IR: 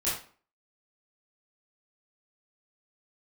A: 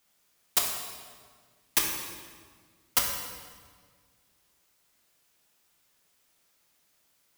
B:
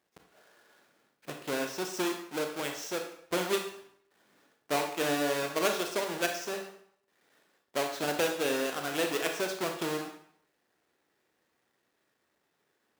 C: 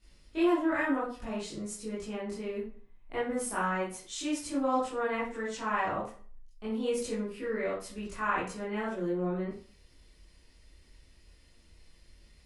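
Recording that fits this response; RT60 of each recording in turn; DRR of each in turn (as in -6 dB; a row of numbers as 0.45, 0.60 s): C; 1.7, 0.65, 0.45 s; -0.5, 3.5, -10.0 dB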